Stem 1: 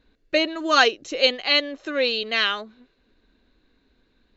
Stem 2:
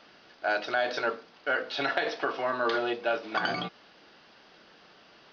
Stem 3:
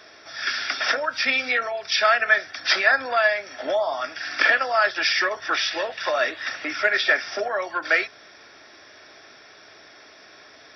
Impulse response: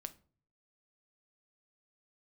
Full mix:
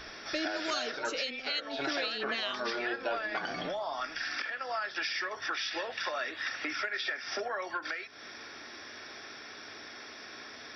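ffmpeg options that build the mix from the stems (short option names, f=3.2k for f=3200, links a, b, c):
-filter_complex "[0:a]acrossover=split=270|3000[a][b][c];[b]acompressor=threshold=-28dB:ratio=6[d];[a][d][c]amix=inputs=3:normalize=0,acrossover=split=620[e][f];[e]aeval=exprs='val(0)*(1-0.7/2+0.7/2*cos(2*PI*2.2*n/s))':c=same[g];[f]aeval=exprs='val(0)*(1-0.7/2-0.7/2*cos(2*PI*2.2*n/s))':c=same[h];[g][h]amix=inputs=2:normalize=0,volume=0dB[i];[1:a]volume=-2.5dB,asplit=2[j][k];[k]volume=-3dB[l];[2:a]equalizer=f=630:t=o:w=0.35:g=-6,acompressor=threshold=-24dB:ratio=6,aeval=exprs='val(0)+0.002*(sin(2*PI*60*n/s)+sin(2*PI*2*60*n/s)/2+sin(2*PI*3*60*n/s)/3+sin(2*PI*4*60*n/s)/4+sin(2*PI*5*60*n/s)/5)':c=same,volume=2dB[m];[j][m]amix=inputs=2:normalize=0,bandreject=f=60:t=h:w=6,bandreject=f=120:t=h:w=6,bandreject=f=180:t=h:w=6,acompressor=threshold=-36dB:ratio=2.5,volume=0dB[n];[3:a]atrim=start_sample=2205[o];[l][o]afir=irnorm=-1:irlink=0[p];[i][n][p]amix=inputs=3:normalize=0,alimiter=limit=-22.5dB:level=0:latency=1:release=383"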